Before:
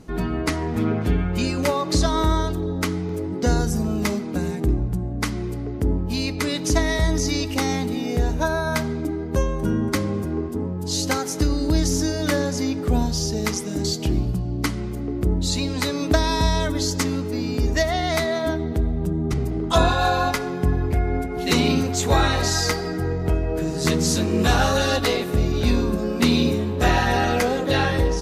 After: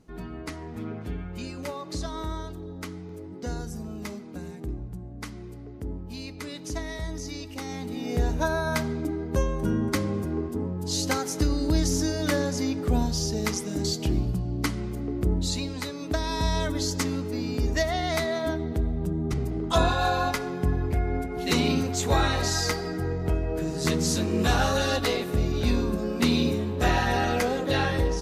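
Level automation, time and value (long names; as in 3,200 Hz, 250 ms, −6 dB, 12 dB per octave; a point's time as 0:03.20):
0:07.64 −13 dB
0:08.19 −3.5 dB
0:15.39 −3.5 dB
0:15.97 −11 dB
0:16.58 −4.5 dB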